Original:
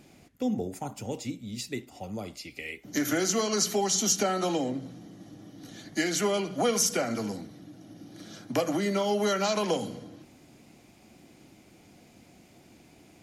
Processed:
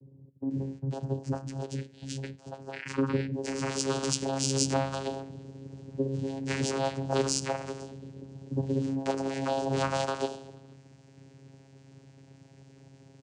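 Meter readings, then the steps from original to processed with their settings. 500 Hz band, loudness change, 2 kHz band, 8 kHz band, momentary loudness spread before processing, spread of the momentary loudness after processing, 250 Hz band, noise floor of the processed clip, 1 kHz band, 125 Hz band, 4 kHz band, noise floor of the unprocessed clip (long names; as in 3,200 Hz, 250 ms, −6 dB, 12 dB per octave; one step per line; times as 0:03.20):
−2.5 dB, −3.0 dB, −3.5 dB, −6.0 dB, 22 LU, 15 LU, −1.5 dB, −57 dBFS, −1.5 dB, +6.5 dB, −3.5 dB, −57 dBFS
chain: sound drawn into the spectrogram fall, 0:02.22–0:02.65, 940–2,500 Hz −38 dBFS
comb filter 6.6 ms, depth 89%
multiband delay without the direct sound lows, highs 500 ms, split 390 Hz
channel vocoder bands 8, saw 135 Hz
high-shelf EQ 4,000 Hz +11.5 dB
level −2.5 dB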